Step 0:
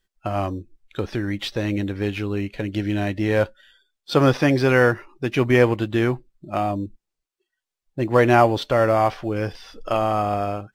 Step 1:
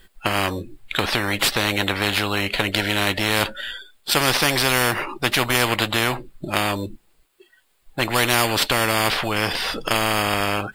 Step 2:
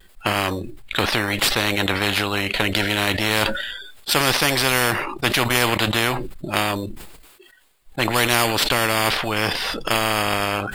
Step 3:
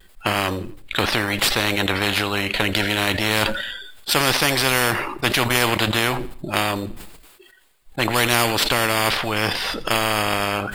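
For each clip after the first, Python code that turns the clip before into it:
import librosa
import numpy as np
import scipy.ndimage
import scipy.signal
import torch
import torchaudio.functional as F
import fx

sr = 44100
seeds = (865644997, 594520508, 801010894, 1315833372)

y1 = fx.peak_eq(x, sr, hz=5900.0, db=-12.0, octaves=0.41)
y1 = fx.spectral_comp(y1, sr, ratio=4.0)
y1 = y1 * 10.0 ** (1.5 / 20.0)
y2 = fx.transient(y1, sr, attack_db=0, sustain_db=-8)
y2 = fx.vibrato(y2, sr, rate_hz=0.34, depth_cents=14.0)
y2 = fx.sustainer(y2, sr, db_per_s=48.0)
y3 = fx.echo_feedback(y2, sr, ms=84, feedback_pct=45, wet_db=-19.5)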